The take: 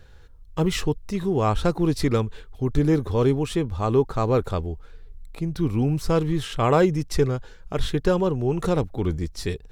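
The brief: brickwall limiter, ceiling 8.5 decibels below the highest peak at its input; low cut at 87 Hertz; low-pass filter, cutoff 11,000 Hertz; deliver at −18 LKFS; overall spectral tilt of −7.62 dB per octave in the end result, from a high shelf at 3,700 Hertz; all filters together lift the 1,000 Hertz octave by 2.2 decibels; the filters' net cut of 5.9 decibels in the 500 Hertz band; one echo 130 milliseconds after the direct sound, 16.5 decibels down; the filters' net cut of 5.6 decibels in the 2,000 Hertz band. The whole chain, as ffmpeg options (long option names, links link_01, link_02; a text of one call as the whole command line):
ffmpeg -i in.wav -af "highpass=87,lowpass=11000,equalizer=frequency=500:width_type=o:gain=-9,equalizer=frequency=1000:width_type=o:gain=8.5,equalizer=frequency=2000:width_type=o:gain=-8.5,highshelf=frequency=3700:gain=-8,alimiter=limit=-17dB:level=0:latency=1,aecho=1:1:130:0.15,volume=10.5dB" out.wav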